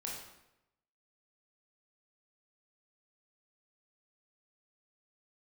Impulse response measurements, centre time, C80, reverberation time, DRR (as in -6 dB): 53 ms, 5.5 dB, 0.90 s, -3.5 dB